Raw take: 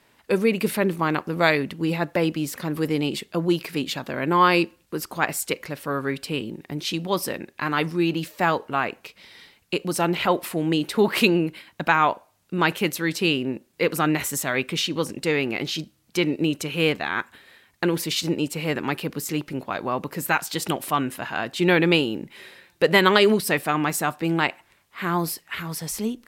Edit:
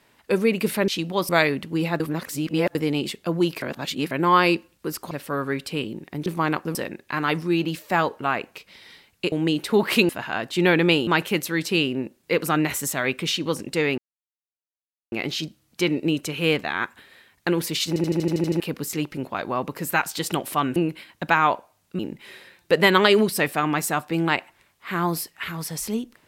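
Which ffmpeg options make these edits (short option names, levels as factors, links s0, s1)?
-filter_complex "[0:a]asplit=25[s0][s1][s2][s3][s4][s5][s6][s7][s8][s9][s10][s11][s12][s13][s14][s15][s16][s17][s18][s19][s20][s21][s22][s23][s24];[s0]atrim=end=0.882[s25];[s1]atrim=start=6.828:end=7.242[s26];[s2]atrim=start=1.368:end=2.082[s27];[s3]atrim=start=2.078:end=2.832,asetpts=PTS-STARTPTS,areverse[s28];[s4]atrim=start=2.828:end=3.702[s29];[s5]atrim=start=3.698:end=4.192,asetpts=PTS-STARTPTS,areverse[s30];[s6]atrim=start=4.188:end=5.192[s31];[s7]atrim=start=5.678:end=6.832[s32];[s8]atrim=start=0.878:end=1.372[s33];[s9]atrim=start=7.238:end=9.812[s34];[s10]atrim=start=10.568:end=11.342[s35];[s11]atrim=start=21.118:end=22.102[s36];[s12]atrim=start=12.568:end=15.48,asetpts=PTS-STARTPTS,afade=t=out:st=2.908:d=0.004:c=hsin,apad=pad_dur=1.14[s37];[s13]atrim=start=15.48:end=18.322,asetpts=PTS-STARTPTS,afade=t=in:d=0.004:c=hsin[s38];[s14]atrim=start=18.238:end=18.322[s39];[s15]atrim=start=18.238:end=18.322[s40];[s16]atrim=start=18.238:end=18.322[s41];[s17]atrim=start=18.238:end=18.322[s42];[s18]atrim=start=18.238:end=18.322[s43];[s19]atrim=start=18.238:end=18.322[s44];[s20]atrim=start=18.238:end=18.322[s45];[s21]atrim=start=18.238:end=18.322[s46];[s22]atrim=start=18.958:end=21.122[s47];[s23]atrim=start=11.338:end=12.572[s48];[s24]atrim=start=22.098[s49];[s25][s26]acrossfade=d=0.004:c1=hsin:c2=hsin[s50];[s50][s27]acrossfade=d=0.004:c1=hsin:c2=hsin[s51];[s51][s28]acrossfade=d=0.004:c1=hsin:c2=hsin[s52];[s52][s29]acrossfade=d=0.004:c1=hsin:c2=hsin[s53];[s53][s30]acrossfade=d=0.004:c1=hsin:c2=hsin[s54];[s54][s31]acrossfade=d=0.004:c1=hsin:c2=hsin[s55];[s55][s32]acrossfade=d=0.004:c1=hsin:c2=hsin[s56];[s56][s33]acrossfade=d=0.004:c1=hsin:c2=hsin[s57];[s57][s34]acrossfade=d=0.004:c1=hsin:c2=hsin[s58];[s58][s35]acrossfade=d=0.004:c1=hsin:c2=hsin[s59];[s59][s36]acrossfade=d=0.004:c1=hsin:c2=hsin[s60];[s37][s38]concat=n=2:v=0:a=1[s61];[s60][s61]acrossfade=d=0.004:c1=hsin:c2=hsin[s62];[s62][s39]acrossfade=d=0.004:c1=hsin:c2=hsin[s63];[s63][s40]acrossfade=d=0.004:c1=hsin:c2=hsin[s64];[s64][s41]acrossfade=d=0.004:c1=hsin:c2=hsin[s65];[s65][s42]acrossfade=d=0.004:c1=hsin:c2=hsin[s66];[s66][s43]acrossfade=d=0.004:c1=hsin:c2=hsin[s67];[s67][s44]acrossfade=d=0.004:c1=hsin:c2=hsin[s68];[s68][s45]acrossfade=d=0.004:c1=hsin:c2=hsin[s69];[s69][s46]acrossfade=d=0.004:c1=hsin:c2=hsin[s70];[s70][s47]acrossfade=d=0.004:c1=hsin:c2=hsin[s71];[s71][s48]acrossfade=d=0.004:c1=hsin:c2=hsin[s72];[s72][s49]acrossfade=d=0.004:c1=hsin:c2=hsin"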